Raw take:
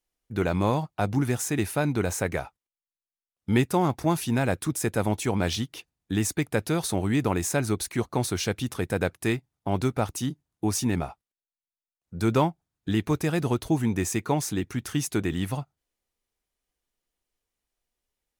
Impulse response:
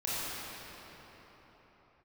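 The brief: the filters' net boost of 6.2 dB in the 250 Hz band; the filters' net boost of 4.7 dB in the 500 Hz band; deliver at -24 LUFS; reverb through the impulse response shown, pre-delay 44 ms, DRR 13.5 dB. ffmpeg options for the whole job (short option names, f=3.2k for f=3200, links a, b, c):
-filter_complex "[0:a]equalizer=f=250:t=o:g=7,equalizer=f=500:t=o:g=3.5,asplit=2[a][b];[1:a]atrim=start_sample=2205,adelay=44[c];[b][c]afir=irnorm=-1:irlink=0,volume=-21dB[d];[a][d]amix=inputs=2:normalize=0,volume=-1dB"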